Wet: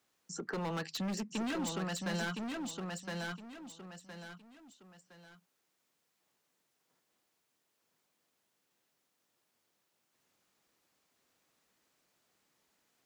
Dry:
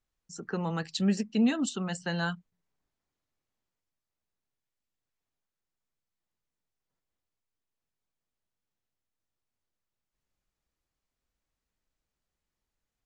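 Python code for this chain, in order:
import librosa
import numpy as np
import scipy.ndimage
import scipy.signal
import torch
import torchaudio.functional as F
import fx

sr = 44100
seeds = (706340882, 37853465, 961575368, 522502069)

p1 = scipy.signal.sosfilt(scipy.signal.butter(2, 210.0, 'highpass', fs=sr, output='sos'), x)
p2 = np.clip(p1, -10.0 ** (-33.5 / 20.0), 10.0 ** (-33.5 / 20.0))
p3 = p2 + fx.echo_feedback(p2, sr, ms=1014, feedback_pct=21, wet_db=-5.0, dry=0)
y = fx.band_squash(p3, sr, depth_pct=40)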